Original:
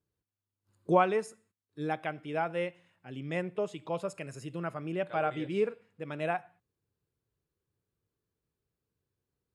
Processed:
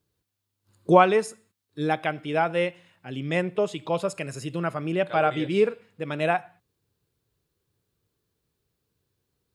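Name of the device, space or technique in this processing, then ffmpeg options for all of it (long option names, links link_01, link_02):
presence and air boost: -af "equalizer=frequency=3900:width_type=o:width=0.84:gain=4.5,highshelf=frequency=9700:gain=4,volume=8dB"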